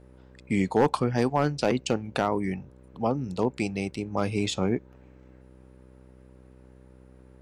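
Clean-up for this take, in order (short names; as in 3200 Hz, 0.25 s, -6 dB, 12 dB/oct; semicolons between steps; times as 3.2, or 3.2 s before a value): clip repair -13.5 dBFS; de-hum 63.7 Hz, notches 9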